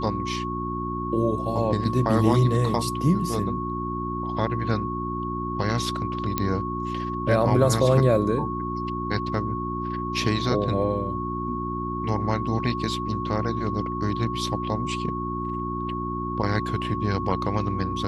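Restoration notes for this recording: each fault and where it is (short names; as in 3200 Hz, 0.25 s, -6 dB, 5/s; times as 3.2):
hum 60 Hz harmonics 6 -31 dBFS
tone 1100 Hz -30 dBFS
6.38 pop -9 dBFS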